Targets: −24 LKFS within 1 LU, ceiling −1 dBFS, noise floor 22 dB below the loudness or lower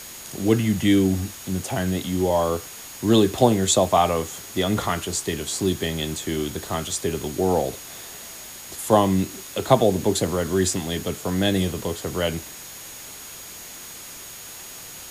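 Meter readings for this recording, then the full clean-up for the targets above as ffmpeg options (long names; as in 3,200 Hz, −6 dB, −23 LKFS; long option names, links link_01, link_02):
interfering tone 6,700 Hz; level of the tone −43 dBFS; background noise floor −39 dBFS; target noise floor −45 dBFS; integrated loudness −22.5 LKFS; sample peak −2.5 dBFS; target loudness −24.0 LKFS
→ -af "bandreject=frequency=6700:width=30"
-af "afftdn=noise_reduction=6:noise_floor=-39"
-af "volume=-1.5dB"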